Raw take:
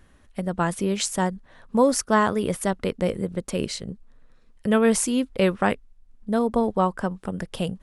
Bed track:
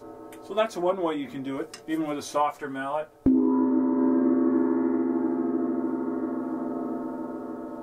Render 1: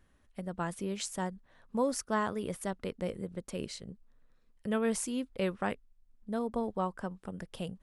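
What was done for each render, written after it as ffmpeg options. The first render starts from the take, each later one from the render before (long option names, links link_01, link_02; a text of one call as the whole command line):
ffmpeg -i in.wav -af "volume=-11.5dB" out.wav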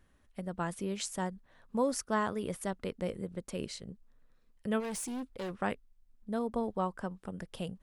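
ffmpeg -i in.wav -filter_complex "[0:a]asplit=3[link_01][link_02][link_03];[link_01]afade=type=out:start_time=4.79:duration=0.02[link_04];[link_02]asoftclip=type=hard:threshold=-35.5dB,afade=type=in:start_time=4.79:duration=0.02,afade=type=out:start_time=5.56:duration=0.02[link_05];[link_03]afade=type=in:start_time=5.56:duration=0.02[link_06];[link_04][link_05][link_06]amix=inputs=3:normalize=0" out.wav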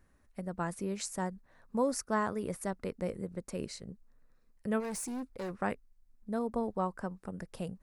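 ffmpeg -i in.wav -af "equalizer=frequency=3200:width_type=o:width=0.42:gain=-10.5" out.wav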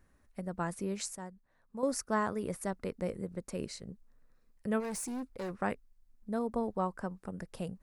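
ffmpeg -i in.wav -filter_complex "[0:a]asplit=3[link_01][link_02][link_03];[link_01]atrim=end=1.152[link_04];[link_02]atrim=start=1.148:end=1.832,asetpts=PTS-STARTPTS,volume=-9.5dB[link_05];[link_03]atrim=start=1.828[link_06];[link_04][link_05]acrossfade=duration=0.004:curve1=hsin:curve2=hsin[link_07];[link_07][link_06]acrossfade=duration=0.004:curve1=hsin:curve2=hsin" out.wav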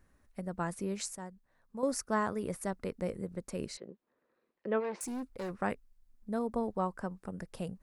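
ffmpeg -i in.wav -filter_complex "[0:a]asettb=1/sr,asplit=3[link_01][link_02][link_03];[link_01]atrim=end=3.774[link_04];[link_02]atrim=start=3.77:end=5.01,asetpts=PTS-STARTPTS,afade=type=in:duration=0.004:curve=qsin,afade=type=out:start_time=1.236:duration=0.004:curve=qsin,highpass=280,equalizer=frequency=360:width_type=q:width=4:gain=9,equalizer=frequency=530:width_type=q:width=4:gain=5,equalizer=frequency=980:width_type=q:width=4:gain=3,lowpass=frequency=3700:width=0.5412,lowpass=frequency=3700:width=1.3066[link_05];[link_03]atrim=start=5.006[link_06];[link_04][link_05]acrossfade=duration=0.004:curve1=hsin:curve2=qsin[link_07];[link_07][link_06]acrossfade=duration=0.004:curve1=qsin:curve2=hsin" out.wav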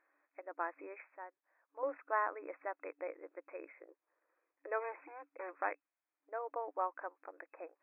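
ffmpeg -i in.wav -af "equalizer=frequency=390:width=2:gain=-12,afftfilt=real='re*between(b*sr/4096,290,2600)':imag='im*between(b*sr/4096,290,2600)':win_size=4096:overlap=0.75" out.wav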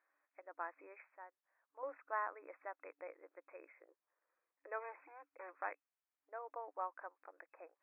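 ffmpeg -i in.wav -af "highpass=frequency=1100:poles=1,highshelf=frequency=2200:gain=-9.5" out.wav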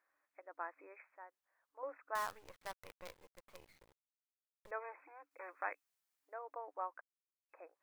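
ffmpeg -i in.wav -filter_complex "[0:a]asettb=1/sr,asplit=3[link_01][link_02][link_03];[link_01]atrim=end=2.154[link_04];[link_02]atrim=start=2.15:end=4.71,asetpts=PTS-STARTPTS,afade=type=in:duration=0.004:curve=qsin,afade=type=out:start_time=2.556:duration=0.004:curve=qsin,acrusher=bits=8:dc=4:mix=0:aa=0.000001[link_05];[link_03]atrim=start=4.706[link_06];[link_04][link_05]acrossfade=duration=0.004:curve1=hsin:curve2=qsin[link_07];[link_07][link_06]acrossfade=duration=0.004:curve1=qsin:curve2=hsin,asettb=1/sr,asplit=3[link_08][link_09][link_10];[link_08]atrim=end=5.314[link_11];[link_09]atrim=start=5.31:end=6.34,asetpts=PTS-STARTPTS,afade=type=in:duration=0.004:curve=qsin,afade=type=out:start_time=1.026:duration=0.004:curve=qsin,highshelf=frequency=2200:gain=8.5[link_12];[link_10]atrim=start=6.336[link_13];[link_11][link_12]acrossfade=duration=0.004:curve1=hsin:curve2=qsin[link_14];[link_14][link_13]acrossfade=duration=0.004:curve1=qsin:curve2=hsin,asplit=3[link_15][link_16][link_17];[link_15]atrim=end=7.01,asetpts=PTS-STARTPTS,afade=type=out:start_time=7.006:duration=0.004:curve=hsin[link_18];[link_16]atrim=start=7.01:end=7.49,asetpts=PTS-STARTPTS,volume=0[link_19];[link_17]atrim=start=7.49,asetpts=PTS-STARTPTS,afade=type=in:duration=0.004:curve=hsin[link_20];[link_18][link_19][link_20]concat=n=3:v=0:a=1" out.wav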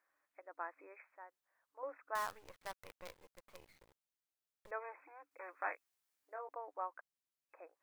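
ffmpeg -i in.wav -filter_complex "[0:a]asettb=1/sr,asplit=3[link_01][link_02][link_03];[link_01]atrim=end=5.594[link_04];[link_02]atrim=start=5.59:end=6.49,asetpts=PTS-STARTPTS,afade=type=in:duration=0.004:curve=qsin,afade=type=out:start_time=0.896:duration=0.004:curve=qsin,asplit=2[link_05][link_06];[link_06]adelay=23,volume=-6dB[link_07];[link_05][link_07]amix=inputs=2:normalize=0,atrim=end_sample=39690[link_08];[link_03]atrim=start=6.486[link_09];[link_04][link_08]acrossfade=duration=0.004:curve1=hsin:curve2=qsin[link_10];[link_10][link_09]acrossfade=duration=0.004:curve1=qsin:curve2=hsin" out.wav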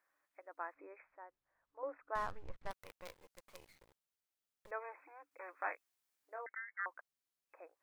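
ffmpeg -i in.wav -filter_complex "[0:a]asettb=1/sr,asplit=3[link_01][link_02][link_03];[link_01]atrim=end=0.744[link_04];[link_02]atrim=start=0.74:end=2.71,asetpts=PTS-STARTPTS,afade=type=in:duration=0.004:curve=qsin,afade=type=out:start_time=1.966:duration=0.004:curve=qsin,aemphasis=mode=reproduction:type=riaa[link_05];[link_03]atrim=start=2.706[link_06];[link_04][link_05]acrossfade=duration=0.004:curve1=hsin:curve2=qsin[link_07];[link_07][link_06]acrossfade=duration=0.004:curve1=qsin:curve2=hsin,asettb=1/sr,asplit=3[link_08][link_09][link_10];[link_08]atrim=end=3.304[link_11];[link_09]atrim=start=3.3:end=3.75,asetpts=PTS-STARTPTS,afade=type=in:duration=0.004:curve=qsin,afade=type=out:start_time=0.446:duration=0.004:curve=qsin,equalizer=frequency=8100:width_type=o:width=2.4:gain=4[link_12];[link_10]atrim=start=3.746[link_13];[link_11][link_12]acrossfade=duration=0.004:curve1=hsin:curve2=qsin[link_14];[link_14][link_13]acrossfade=duration=0.004:curve1=qsin:curve2=hsin,asettb=1/sr,asplit=3[link_15][link_16][link_17];[link_15]atrim=end=6.464[link_18];[link_16]atrim=start=6.46:end=6.86,asetpts=PTS-STARTPTS,afade=type=in:duration=0.004:curve=qsin,afade=type=out:start_time=0.396:duration=0.004:curve=qsin,lowpass=frequency=2100:width_type=q:width=0.5098,lowpass=frequency=2100:width_type=q:width=0.6013,lowpass=frequency=2100:width_type=q:width=0.9,lowpass=frequency=2100:width_type=q:width=2.563,afreqshift=-2500[link_19];[link_17]atrim=start=6.856[link_20];[link_18][link_19]acrossfade=duration=0.004:curve1=hsin:curve2=qsin[link_21];[link_21][link_20]acrossfade=duration=0.004:curve1=qsin:curve2=hsin" out.wav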